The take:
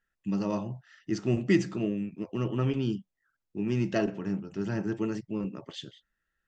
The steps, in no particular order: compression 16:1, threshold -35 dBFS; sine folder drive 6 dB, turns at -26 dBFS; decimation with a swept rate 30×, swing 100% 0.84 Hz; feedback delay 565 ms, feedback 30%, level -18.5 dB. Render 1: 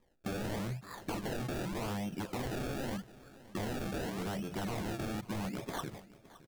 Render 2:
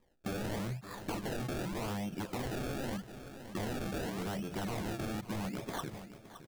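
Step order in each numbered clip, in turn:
decimation with a swept rate > sine folder > compression > feedback delay; sine folder > decimation with a swept rate > feedback delay > compression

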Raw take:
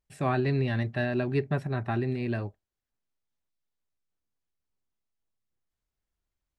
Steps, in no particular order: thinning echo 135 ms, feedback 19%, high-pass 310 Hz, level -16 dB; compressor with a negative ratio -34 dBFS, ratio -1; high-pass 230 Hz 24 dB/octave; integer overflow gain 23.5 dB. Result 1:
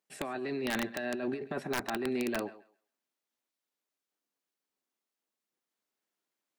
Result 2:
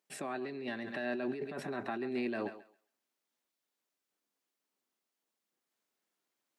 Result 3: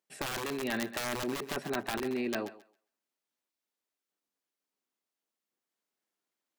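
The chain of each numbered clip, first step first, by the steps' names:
high-pass > compressor with a negative ratio > thinning echo > integer overflow; thinning echo > compressor with a negative ratio > high-pass > integer overflow; high-pass > integer overflow > thinning echo > compressor with a negative ratio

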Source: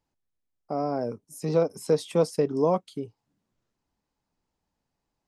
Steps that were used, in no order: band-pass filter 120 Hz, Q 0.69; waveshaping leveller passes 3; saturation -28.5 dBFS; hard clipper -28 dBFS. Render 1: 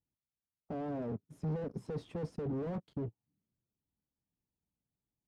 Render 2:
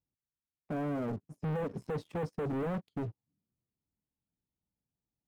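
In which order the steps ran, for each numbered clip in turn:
waveshaping leveller > hard clipper > band-pass filter > saturation; hard clipper > band-pass filter > waveshaping leveller > saturation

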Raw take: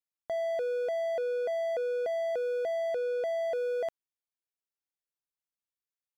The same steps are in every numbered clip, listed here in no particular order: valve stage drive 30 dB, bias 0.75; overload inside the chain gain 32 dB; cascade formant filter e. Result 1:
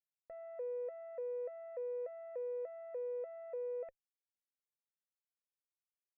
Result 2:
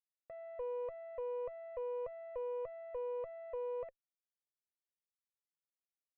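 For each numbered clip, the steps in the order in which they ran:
valve stage > cascade formant filter > overload inside the chain; cascade formant filter > valve stage > overload inside the chain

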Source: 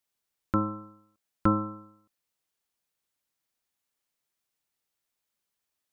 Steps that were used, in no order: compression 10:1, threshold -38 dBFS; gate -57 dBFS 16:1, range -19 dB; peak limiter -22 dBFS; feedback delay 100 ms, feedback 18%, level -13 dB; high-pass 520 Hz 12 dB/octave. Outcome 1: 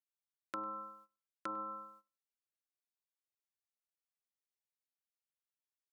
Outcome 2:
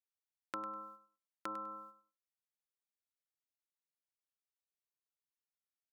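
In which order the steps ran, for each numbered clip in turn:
peak limiter > feedback delay > gate > high-pass > compression; high-pass > gate > compression > peak limiter > feedback delay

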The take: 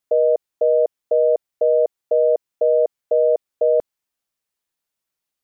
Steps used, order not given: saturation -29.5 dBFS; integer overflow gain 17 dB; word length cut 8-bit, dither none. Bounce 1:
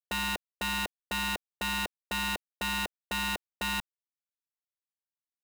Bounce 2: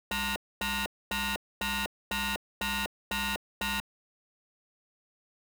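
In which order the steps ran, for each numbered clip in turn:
word length cut > integer overflow > saturation; integer overflow > saturation > word length cut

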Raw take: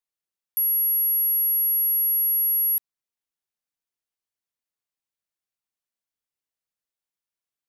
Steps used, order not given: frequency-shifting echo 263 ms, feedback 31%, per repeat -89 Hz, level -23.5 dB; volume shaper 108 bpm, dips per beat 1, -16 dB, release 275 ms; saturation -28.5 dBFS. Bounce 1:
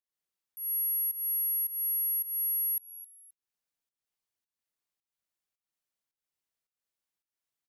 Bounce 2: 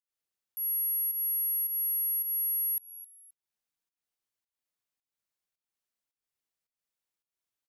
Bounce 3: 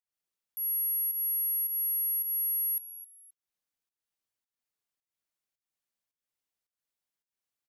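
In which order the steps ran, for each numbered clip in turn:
frequency-shifting echo > saturation > volume shaper; frequency-shifting echo > volume shaper > saturation; volume shaper > frequency-shifting echo > saturation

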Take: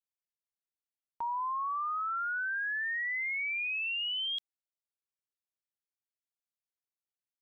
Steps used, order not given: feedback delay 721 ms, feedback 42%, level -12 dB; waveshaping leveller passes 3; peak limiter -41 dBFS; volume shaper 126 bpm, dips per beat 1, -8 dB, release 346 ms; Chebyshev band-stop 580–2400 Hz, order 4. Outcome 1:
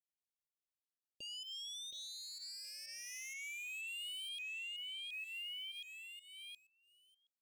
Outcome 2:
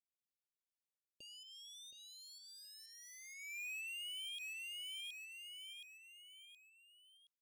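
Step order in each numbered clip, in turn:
feedback delay > volume shaper > waveshaping leveller > Chebyshev band-stop > peak limiter; volume shaper > waveshaping leveller > feedback delay > peak limiter > Chebyshev band-stop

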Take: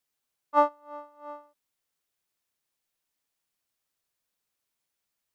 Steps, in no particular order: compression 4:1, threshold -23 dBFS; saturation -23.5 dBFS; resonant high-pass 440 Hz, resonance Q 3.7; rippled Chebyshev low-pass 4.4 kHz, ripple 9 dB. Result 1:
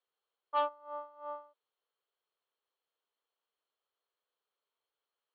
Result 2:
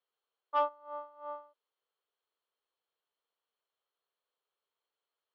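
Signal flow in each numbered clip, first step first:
saturation > resonant high-pass > compression > rippled Chebyshev low-pass; compression > rippled Chebyshev low-pass > saturation > resonant high-pass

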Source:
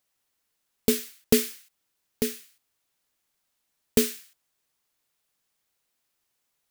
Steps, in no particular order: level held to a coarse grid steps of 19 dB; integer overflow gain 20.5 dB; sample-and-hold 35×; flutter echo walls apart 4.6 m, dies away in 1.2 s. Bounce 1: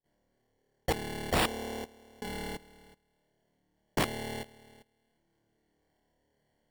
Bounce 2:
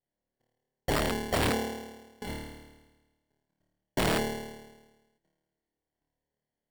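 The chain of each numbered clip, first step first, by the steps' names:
sample-and-hold > flutter echo > level held to a coarse grid > integer overflow; sample-and-hold > level held to a coarse grid > flutter echo > integer overflow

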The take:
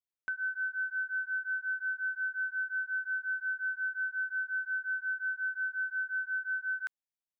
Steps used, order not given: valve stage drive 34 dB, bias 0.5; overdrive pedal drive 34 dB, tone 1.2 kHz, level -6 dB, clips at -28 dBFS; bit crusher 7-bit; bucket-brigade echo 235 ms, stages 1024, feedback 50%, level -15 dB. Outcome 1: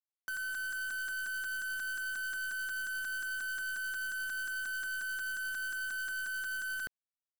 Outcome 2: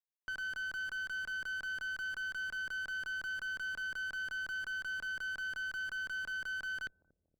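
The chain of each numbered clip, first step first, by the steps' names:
valve stage > overdrive pedal > bucket-brigade echo > bit crusher; bit crusher > overdrive pedal > bucket-brigade echo > valve stage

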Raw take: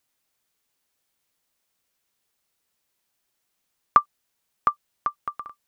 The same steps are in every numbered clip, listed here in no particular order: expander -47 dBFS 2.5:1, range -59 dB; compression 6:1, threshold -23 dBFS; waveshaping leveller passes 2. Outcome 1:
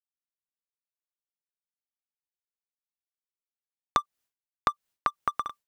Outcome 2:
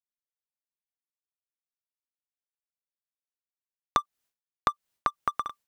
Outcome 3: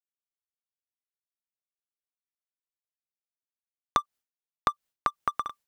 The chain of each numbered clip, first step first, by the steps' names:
expander > waveshaping leveller > compression; waveshaping leveller > expander > compression; waveshaping leveller > compression > expander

